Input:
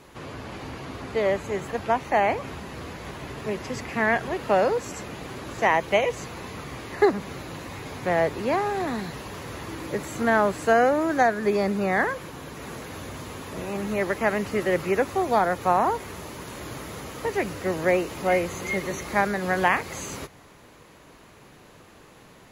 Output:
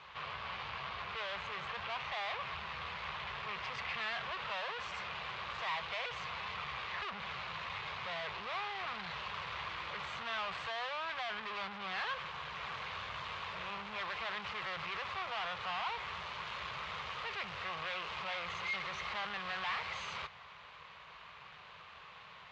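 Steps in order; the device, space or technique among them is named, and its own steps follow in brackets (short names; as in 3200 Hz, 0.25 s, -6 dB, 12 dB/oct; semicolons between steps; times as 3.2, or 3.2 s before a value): scooped metal amplifier (tube stage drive 38 dB, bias 0.65; speaker cabinet 100–3500 Hz, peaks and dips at 110 Hz -9 dB, 270 Hz -7 dB, 1100 Hz +6 dB, 1800 Hz -3 dB; passive tone stack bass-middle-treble 10-0-10); gain +10 dB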